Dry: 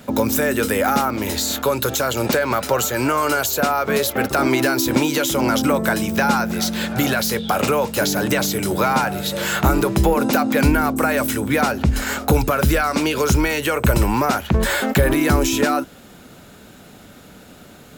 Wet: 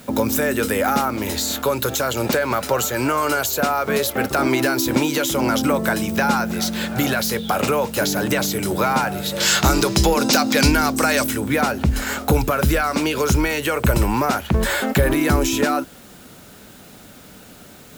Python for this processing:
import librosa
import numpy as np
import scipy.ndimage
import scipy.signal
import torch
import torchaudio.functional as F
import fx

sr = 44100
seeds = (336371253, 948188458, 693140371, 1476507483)

y = fx.peak_eq(x, sr, hz=5200.0, db=15.0, octaves=1.5, at=(9.4, 11.24))
y = fx.quant_dither(y, sr, seeds[0], bits=8, dither='triangular')
y = y * 10.0 ** (-1.0 / 20.0)